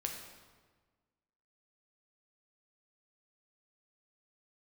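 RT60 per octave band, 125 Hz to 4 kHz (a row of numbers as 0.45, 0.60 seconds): 1.7, 1.7, 1.5, 1.4, 1.2, 1.1 seconds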